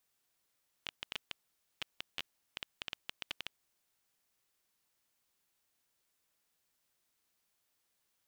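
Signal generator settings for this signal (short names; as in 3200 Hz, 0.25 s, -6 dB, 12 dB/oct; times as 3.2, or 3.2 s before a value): random clicks 8.1/s -20.5 dBFS 2.96 s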